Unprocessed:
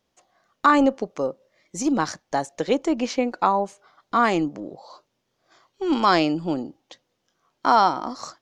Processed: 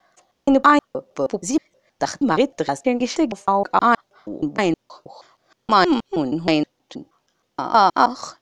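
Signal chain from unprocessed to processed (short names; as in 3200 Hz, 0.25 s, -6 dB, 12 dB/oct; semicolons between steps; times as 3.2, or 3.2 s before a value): slices in reverse order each 0.158 s, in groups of 3; gain +3.5 dB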